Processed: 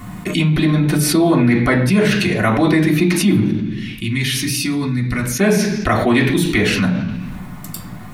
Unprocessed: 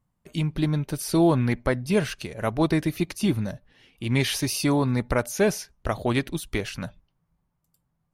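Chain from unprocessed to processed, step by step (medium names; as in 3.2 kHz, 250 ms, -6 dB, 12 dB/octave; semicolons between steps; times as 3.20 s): 3.40–5.39 s: amplifier tone stack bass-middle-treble 6-0-2; reverberation RT60 0.50 s, pre-delay 3 ms, DRR -3.5 dB; level flattener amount 70%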